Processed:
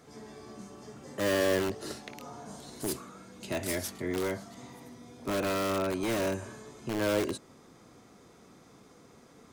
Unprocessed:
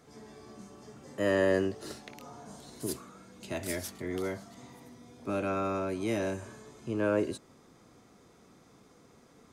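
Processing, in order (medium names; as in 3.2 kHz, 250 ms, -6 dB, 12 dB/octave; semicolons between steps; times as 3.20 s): bass shelf 81 Hz -3 dB; in parallel at -3 dB: integer overflow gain 26.5 dB; on the sum: trim -1.5 dB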